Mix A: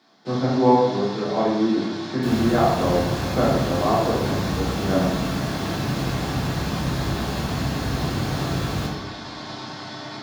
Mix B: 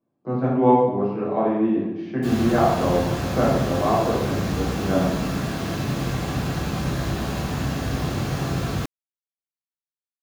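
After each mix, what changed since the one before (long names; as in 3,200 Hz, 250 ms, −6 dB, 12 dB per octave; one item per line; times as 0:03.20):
first sound: muted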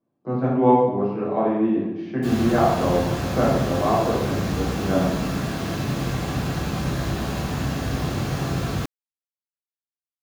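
nothing changed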